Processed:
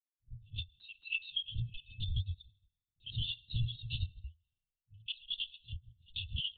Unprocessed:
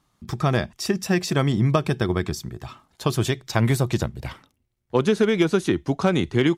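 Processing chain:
spectral dynamics exaggerated over time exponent 2
noise gate −46 dBFS, range −19 dB
brick-wall band-stop 110–2,600 Hz
low-pass that shuts in the quiet parts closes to 430 Hz, open at −30.5 dBFS
parametric band 65 Hz −14 dB 1.3 octaves
downward compressor, threshold −40 dBFS, peak gain reduction 10.5 dB
brickwall limiter −37 dBFS, peak gain reduction 10.5 dB
on a send at −14 dB: convolution reverb RT60 1.0 s, pre-delay 3 ms
on the sum: linear-prediction vocoder at 8 kHz whisper
one half of a high-frequency compander decoder only
level +12 dB

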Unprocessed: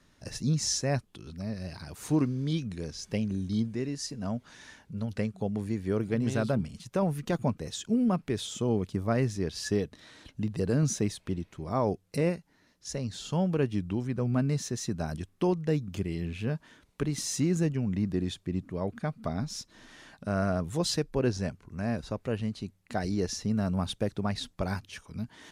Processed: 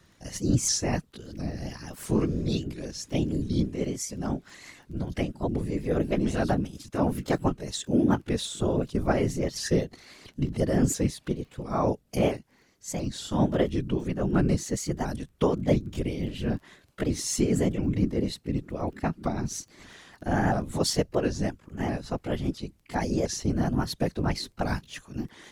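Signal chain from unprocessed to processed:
pitch shifter swept by a sawtooth +3 semitones, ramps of 684 ms
random phases in short frames
surface crackle 11 per second −50 dBFS
level +4 dB

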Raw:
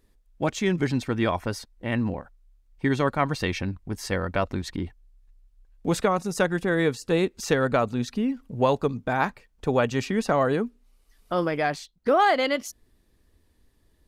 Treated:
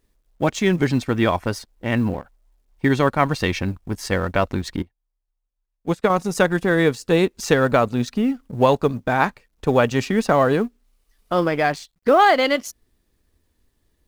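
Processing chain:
mu-law and A-law mismatch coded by A
0:04.82–0:06.10: expander for the loud parts 2.5 to 1, over −33 dBFS
level +6 dB

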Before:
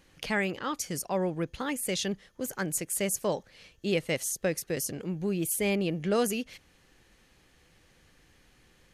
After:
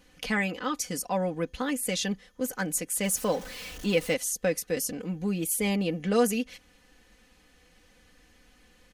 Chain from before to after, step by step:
0:03.04–0:04.14: converter with a step at zero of −38.5 dBFS
comb filter 4 ms, depth 72%

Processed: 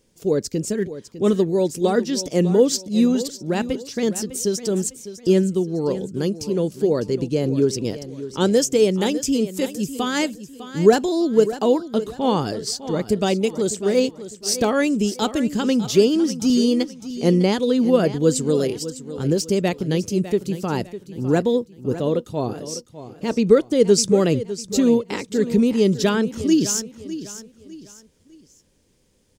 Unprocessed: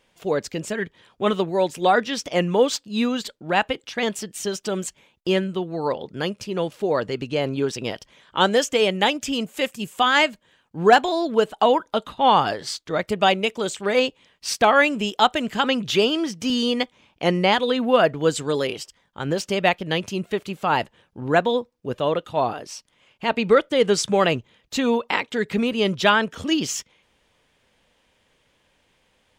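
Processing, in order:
flat-topped bell 1,500 Hz −15 dB 2.9 octaves
repeating echo 603 ms, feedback 34%, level −13.5 dB
level +6 dB

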